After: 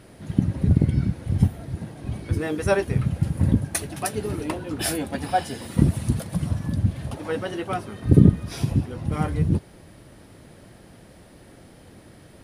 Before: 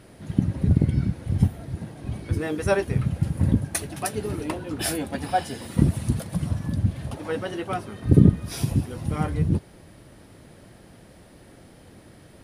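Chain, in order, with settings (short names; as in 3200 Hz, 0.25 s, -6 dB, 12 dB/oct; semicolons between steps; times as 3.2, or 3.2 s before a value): 8.43–9.11 high shelf 8600 Hz -> 4700 Hz -10.5 dB; gain +1 dB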